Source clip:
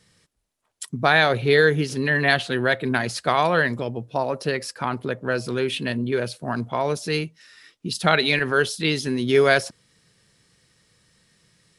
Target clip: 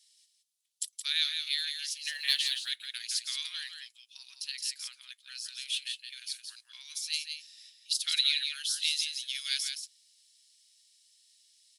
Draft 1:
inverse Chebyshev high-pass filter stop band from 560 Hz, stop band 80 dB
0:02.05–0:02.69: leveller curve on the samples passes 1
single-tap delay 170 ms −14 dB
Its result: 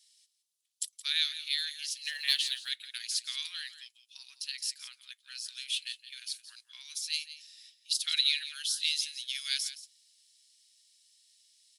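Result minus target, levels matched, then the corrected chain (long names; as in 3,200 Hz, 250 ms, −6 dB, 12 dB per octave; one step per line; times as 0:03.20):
echo-to-direct −7.5 dB
inverse Chebyshev high-pass filter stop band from 560 Hz, stop band 80 dB
0:02.05–0:02.69: leveller curve on the samples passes 1
single-tap delay 170 ms −6.5 dB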